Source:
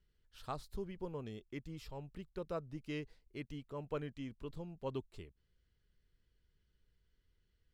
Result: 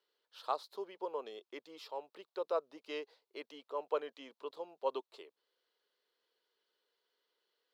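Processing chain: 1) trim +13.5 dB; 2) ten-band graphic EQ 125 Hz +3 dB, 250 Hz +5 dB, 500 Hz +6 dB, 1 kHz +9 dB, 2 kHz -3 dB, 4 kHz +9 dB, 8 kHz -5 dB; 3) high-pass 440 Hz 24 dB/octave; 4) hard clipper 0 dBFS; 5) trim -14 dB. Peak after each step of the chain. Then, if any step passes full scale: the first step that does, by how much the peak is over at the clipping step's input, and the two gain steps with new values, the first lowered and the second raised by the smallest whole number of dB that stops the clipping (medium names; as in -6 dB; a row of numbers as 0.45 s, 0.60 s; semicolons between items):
-14.0 dBFS, -5.5 dBFS, -6.0 dBFS, -6.0 dBFS, -20.0 dBFS; nothing clips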